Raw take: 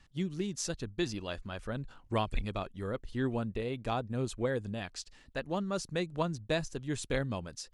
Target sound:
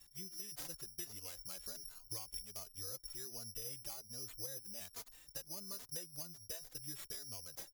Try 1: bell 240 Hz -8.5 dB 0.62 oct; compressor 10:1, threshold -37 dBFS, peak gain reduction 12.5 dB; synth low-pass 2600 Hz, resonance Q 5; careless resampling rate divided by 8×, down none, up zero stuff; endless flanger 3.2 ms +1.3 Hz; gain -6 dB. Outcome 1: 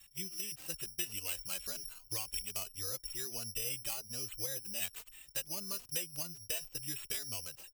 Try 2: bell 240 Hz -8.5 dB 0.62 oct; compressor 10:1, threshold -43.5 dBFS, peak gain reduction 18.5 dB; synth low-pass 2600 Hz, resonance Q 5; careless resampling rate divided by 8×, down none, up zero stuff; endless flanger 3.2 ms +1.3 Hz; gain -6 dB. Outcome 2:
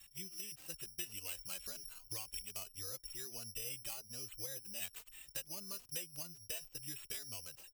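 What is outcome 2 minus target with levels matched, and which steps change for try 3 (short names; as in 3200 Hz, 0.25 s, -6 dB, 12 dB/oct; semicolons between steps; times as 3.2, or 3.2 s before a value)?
2000 Hz band +5.5 dB
remove: synth low-pass 2600 Hz, resonance Q 5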